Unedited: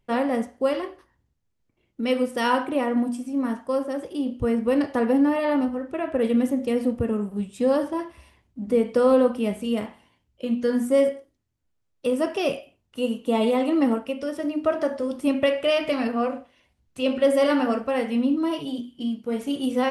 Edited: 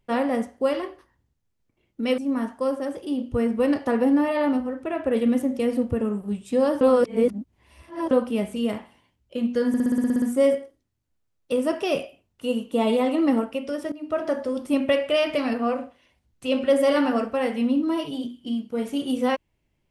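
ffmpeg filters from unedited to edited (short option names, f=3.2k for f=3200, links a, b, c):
-filter_complex "[0:a]asplit=14[a][b][c][d][e][f][g][h][i][j][k][l][m][n];[a]atrim=end=2.182[o];[b]atrim=start=3.258:end=7.892[p];[c]atrim=start=7.888:end=9.192,asetpts=PTS-STARTPTS,areverse[q];[d]atrim=start=9.188:end=10.822[r];[e]atrim=start=10.758:end=10.822[s];[f]atrim=start=10.758:end=10.822[t];[g]atrim=start=10.758:end=10.822[u];[h]atrim=start=10.758:end=10.822[v];[i]atrim=start=10.758:end=10.822[w];[j]atrim=start=10.758:end=10.822[x];[k]atrim=start=10.758:end=10.822[y];[l]atrim=start=10.758:end=10.822[z];[m]atrim=start=10.758:end=14.46,asetpts=PTS-STARTPTS,afade=t=out:st=3.698:d=0.004:c=hsin:silence=0.133352[aa];[n]atrim=start=14.46,asetpts=PTS-STARTPTS,afade=t=in:d=0.52:c=qsin:silence=0.133352[ab];[o][p]acrossfade=d=0.004:c1=hsin:c2=hsin[ac];[ac][q]acrossfade=d=0.004:c1=hsin:c2=hsin[ad];[ad][r]acrossfade=d=0.004:c1=hsin:c2=hsin[ae];[ae][s]acrossfade=d=0.004:c1=hsin:c2=hsin[af];[af][t]acrossfade=d=0.004:c1=hsin:c2=hsin[ag];[ag][u]acrossfade=d=0.004:c1=hsin:c2=hsin[ah];[ah][v]acrossfade=d=0.004:c1=hsin:c2=hsin[ai];[ai][w]acrossfade=d=0.004:c1=hsin:c2=hsin[aj];[aj][x]acrossfade=d=0.004:c1=hsin:c2=hsin[ak];[ak][y]acrossfade=d=0.004:c1=hsin:c2=hsin[al];[al][z]acrossfade=d=0.004:c1=hsin:c2=hsin[am];[aa][ab]concat=n=2:v=0:a=1[an];[am][an]acrossfade=d=0.004:c1=hsin:c2=hsin"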